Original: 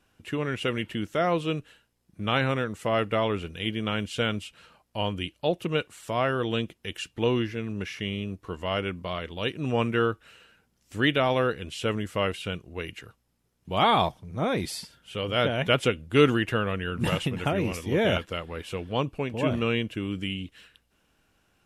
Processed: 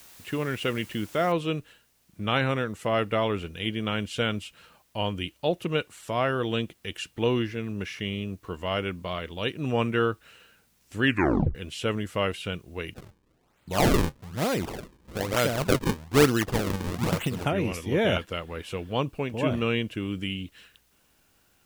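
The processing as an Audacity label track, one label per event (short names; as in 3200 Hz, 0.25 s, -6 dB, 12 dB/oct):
1.320000	1.320000	noise floor step -51 dB -68 dB
11.030000	11.030000	tape stop 0.52 s
12.940000	17.450000	decimation with a swept rate 37×, swing 160% 1.1 Hz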